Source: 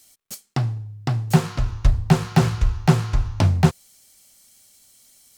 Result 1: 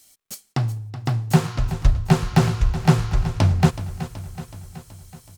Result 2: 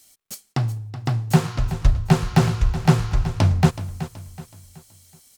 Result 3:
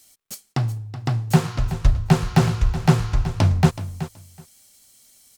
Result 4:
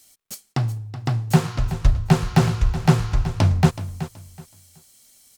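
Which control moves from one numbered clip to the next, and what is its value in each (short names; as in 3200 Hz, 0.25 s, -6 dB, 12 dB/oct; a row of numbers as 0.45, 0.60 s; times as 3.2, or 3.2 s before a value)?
feedback echo, feedback: 60, 39, 16, 24%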